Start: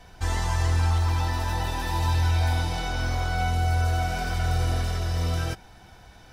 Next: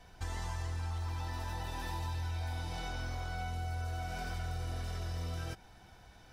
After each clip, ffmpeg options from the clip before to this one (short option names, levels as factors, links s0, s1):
-af "acompressor=threshold=0.0398:ratio=4,volume=0.422"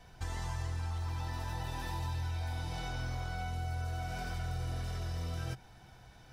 -af "equalizer=f=130:t=o:w=0.34:g=8.5"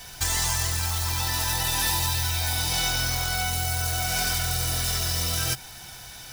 -af "acrusher=bits=7:mode=log:mix=0:aa=0.000001,crystalizer=i=10:c=0,volume=2.11"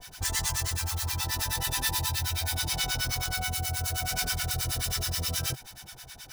-filter_complex "[0:a]acrossover=split=850[s0][s1];[s0]aeval=exprs='val(0)*(1-1/2+1/2*cos(2*PI*9.4*n/s))':c=same[s2];[s1]aeval=exprs='val(0)*(1-1/2-1/2*cos(2*PI*9.4*n/s))':c=same[s3];[s2][s3]amix=inputs=2:normalize=0"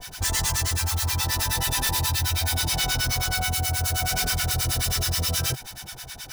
-af "aeval=exprs='0.2*sin(PI/2*2.82*val(0)/0.2)':c=same,volume=0.531"